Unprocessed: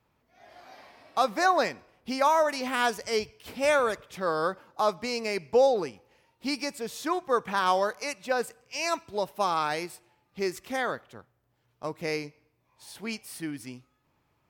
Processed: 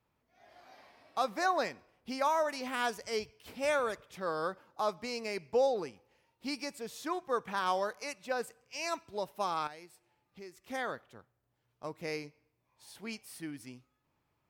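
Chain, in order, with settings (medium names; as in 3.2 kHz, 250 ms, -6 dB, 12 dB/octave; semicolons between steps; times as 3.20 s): 9.67–10.68 s: compression 2:1, threshold -49 dBFS, peak gain reduction 13 dB; trim -7 dB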